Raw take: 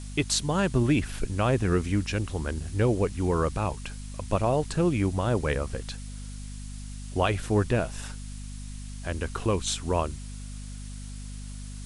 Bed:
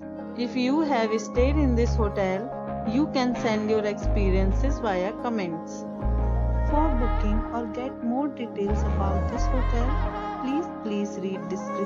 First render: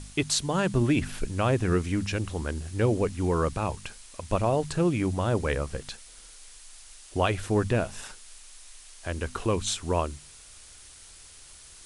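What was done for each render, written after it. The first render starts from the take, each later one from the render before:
hum removal 50 Hz, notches 5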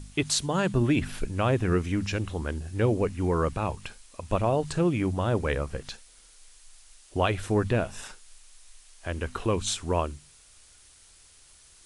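noise reduction from a noise print 6 dB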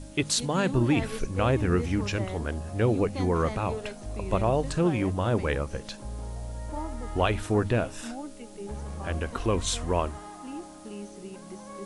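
mix in bed −12 dB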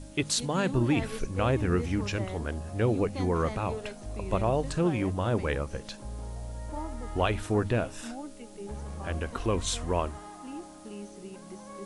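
level −2 dB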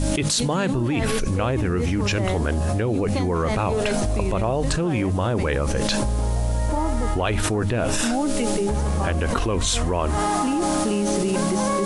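envelope flattener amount 100%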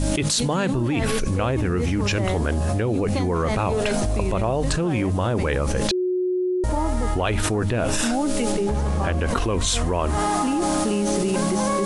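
0:05.91–0:06.64: beep over 365 Hz −19.5 dBFS
0:08.52–0:09.28: high-shelf EQ 7,800 Hz −9.5 dB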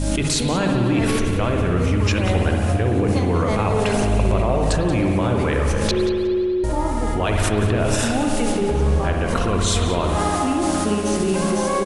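repeating echo 181 ms, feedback 23%, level −14 dB
spring reverb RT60 2.3 s, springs 57 ms, chirp 50 ms, DRR 1.5 dB

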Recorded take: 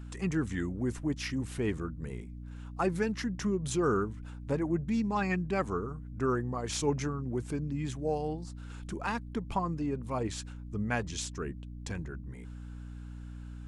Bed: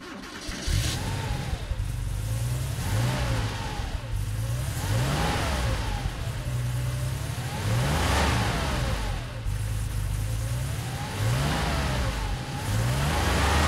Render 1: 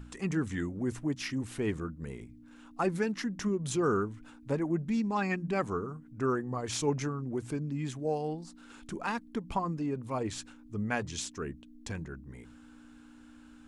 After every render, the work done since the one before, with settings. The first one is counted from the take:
hum removal 60 Hz, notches 3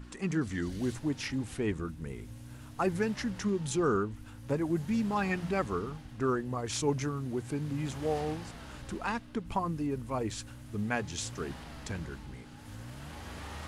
mix in bed −20 dB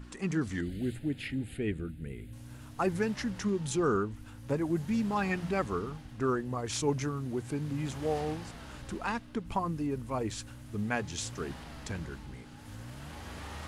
0:00.61–0:02.33: phaser with its sweep stopped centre 2,500 Hz, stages 4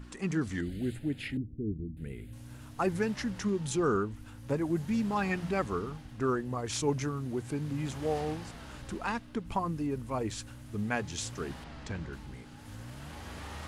0:01.37–0:01.97: inverse Chebyshev low-pass filter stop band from 1,600 Hz, stop band 70 dB
0:11.64–0:12.13: high-frequency loss of the air 76 metres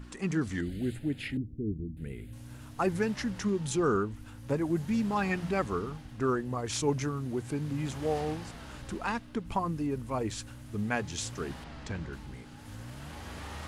level +1 dB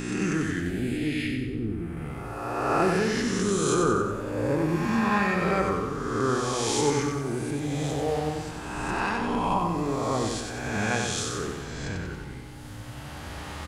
peak hold with a rise ahead of every peak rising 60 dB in 1.87 s
repeating echo 93 ms, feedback 51%, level −4.5 dB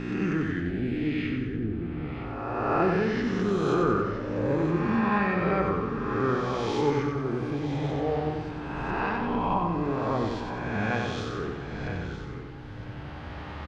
high-frequency loss of the air 270 metres
single-tap delay 964 ms −12 dB

